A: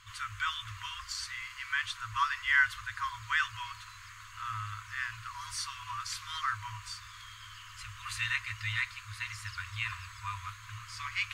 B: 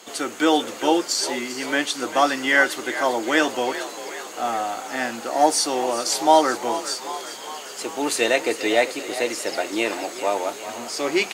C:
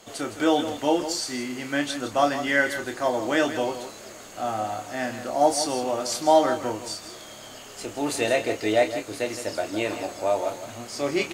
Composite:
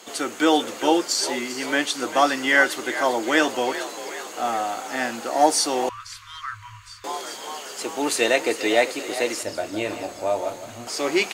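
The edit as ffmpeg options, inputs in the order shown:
-filter_complex "[1:a]asplit=3[s0][s1][s2];[s0]atrim=end=5.892[s3];[0:a]atrim=start=5.888:end=7.042[s4];[s1]atrim=start=7.038:end=9.432[s5];[2:a]atrim=start=9.428:end=10.872[s6];[s2]atrim=start=10.868[s7];[s3][s4]acrossfade=d=0.004:c1=hsin:c2=hsin[s8];[s8][s5]acrossfade=d=0.004:c1=hsin:c2=hsin[s9];[s9][s6]acrossfade=d=0.004:c1=hsin:c2=hsin[s10];[s10][s7]acrossfade=d=0.004:c1=hsin:c2=hsin"

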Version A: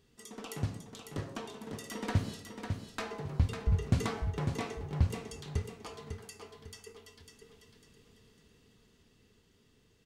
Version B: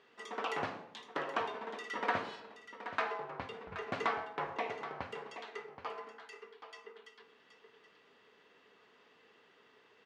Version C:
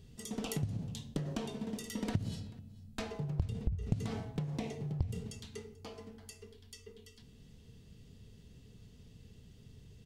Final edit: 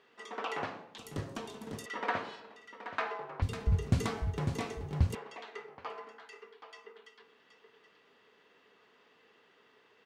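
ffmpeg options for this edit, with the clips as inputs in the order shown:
-filter_complex "[0:a]asplit=2[s0][s1];[1:a]asplit=3[s2][s3][s4];[s2]atrim=end=0.982[s5];[s0]atrim=start=0.978:end=1.862[s6];[s3]atrim=start=1.858:end=3.422[s7];[s1]atrim=start=3.418:end=5.152[s8];[s4]atrim=start=5.148[s9];[s5][s6]acrossfade=d=0.004:c1=hsin:c2=hsin[s10];[s10][s7]acrossfade=d=0.004:c1=hsin:c2=hsin[s11];[s11][s8]acrossfade=d=0.004:c1=hsin:c2=hsin[s12];[s12][s9]acrossfade=d=0.004:c1=hsin:c2=hsin"

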